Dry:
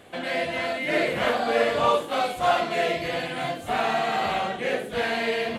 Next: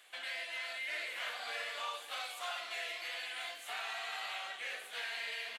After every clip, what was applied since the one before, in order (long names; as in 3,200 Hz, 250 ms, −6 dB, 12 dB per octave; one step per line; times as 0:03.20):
Bessel high-pass filter 2,100 Hz, order 2
downward compressor 2.5 to 1, threshold −36 dBFS, peak gain reduction 7.5 dB
single-tap delay 531 ms −14 dB
level −3.5 dB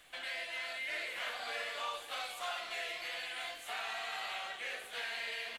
low-shelf EQ 450 Hz +8 dB
background noise pink −73 dBFS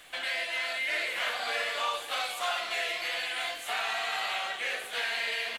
low-shelf EQ 140 Hz −5 dB
level +8.5 dB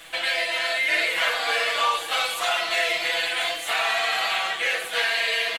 comb filter 6.1 ms, depth 81%
level +6 dB